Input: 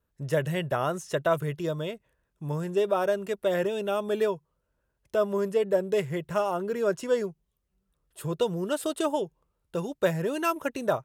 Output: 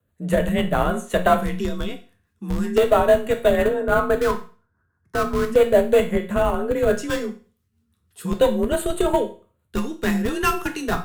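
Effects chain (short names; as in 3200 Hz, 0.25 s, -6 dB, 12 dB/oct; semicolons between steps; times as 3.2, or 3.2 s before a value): 3.62–5.45 resonant high shelf 2000 Hz -12.5 dB, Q 3; frequency shift +38 Hz; rotary speaker horn 6 Hz; in parallel at -4 dB: Schmitt trigger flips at -23.5 dBFS; on the sum: LFO notch square 0.36 Hz 580–5300 Hz; on a send at -5 dB: reverb RT60 0.40 s, pre-delay 6 ms; on the sum: gain +8 dB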